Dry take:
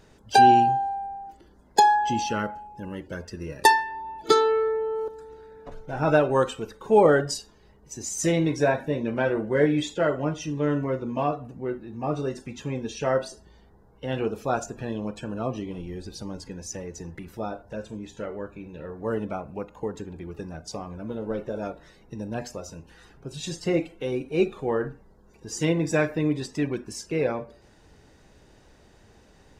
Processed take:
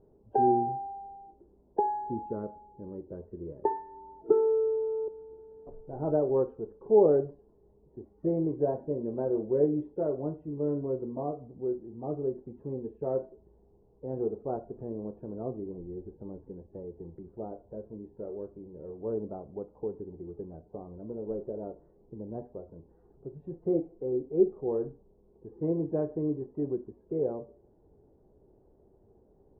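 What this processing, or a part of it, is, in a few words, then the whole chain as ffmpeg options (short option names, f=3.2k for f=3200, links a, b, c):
under water: -af "lowpass=f=800:w=0.5412,lowpass=f=800:w=1.3066,equalizer=f=390:t=o:w=0.47:g=9,volume=-8.5dB"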